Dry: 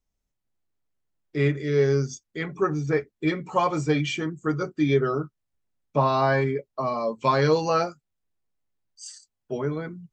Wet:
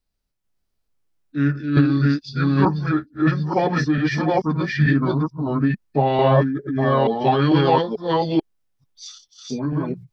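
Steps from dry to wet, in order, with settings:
delay that plays each chunk backwards 442 ms, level 0 dB
formants moved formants −5 semitones
level +3 dB

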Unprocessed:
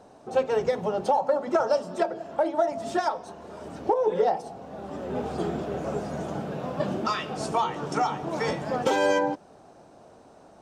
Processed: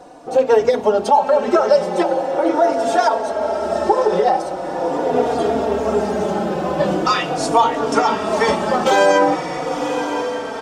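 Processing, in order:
parametric band 120 Hz −14 dB 0.68 octaves
on a send: feedback delay with all-pass diffusion 1,033 ms, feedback 60%, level −8 dB
on the sum: boost into a limiter +15.5 dB
barber-pole flanger 3.6 ms −0.42 Hz
level −1.5 dB

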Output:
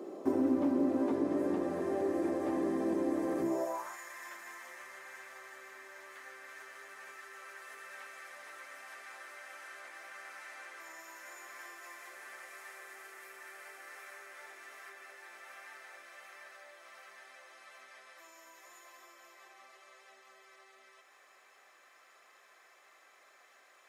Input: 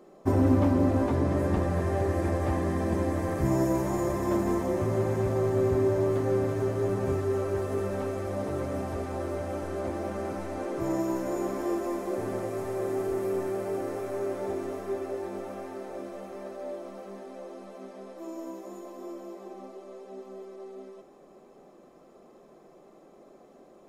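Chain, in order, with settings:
downward compressor 2 to 1, threshold −48 dBFS, peak gain reduction 16.5 dB
high-pass filter sweep 300 Hz → 1,800 Hz, 0:03.44–0:03.98
level +4.5 dB

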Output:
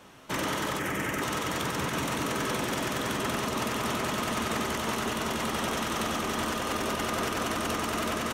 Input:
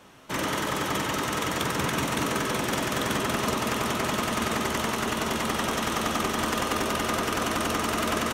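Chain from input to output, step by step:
0:00.79–0:01.22: octave-band graphic EQ 1,000/2,000/4,000 Hz −6/+7/−12 dB
brickwall limiter −20.5 dBFS, peak gain reduction 7 dB

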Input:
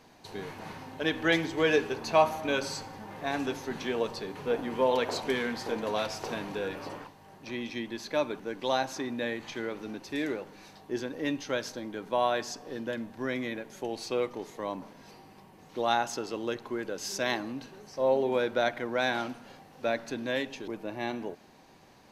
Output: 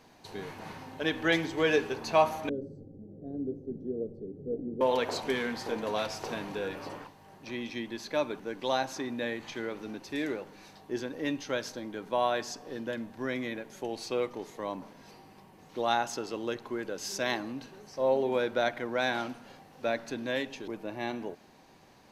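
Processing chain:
0:02.49–0:04.81: inverse Chebyshev low-pass filter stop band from 900 Hz, stop band 40 dB
level −1 dB

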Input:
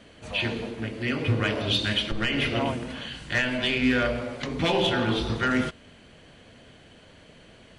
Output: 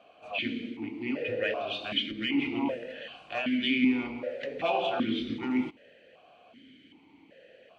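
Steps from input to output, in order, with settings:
formant filter that steps through the vowels 2.6 Hz
level +7 dB

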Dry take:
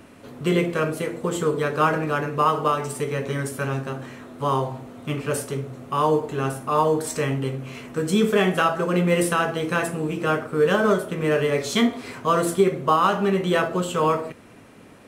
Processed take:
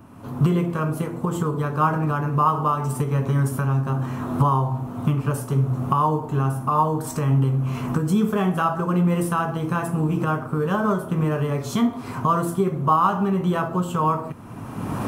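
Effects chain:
camcorder AGC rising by 27 dB per second
octave-band graphic EQ 125/500/1,000/2,000/4,000/8,000 Hz +7/−9/+7/−11/−8/−7 dB

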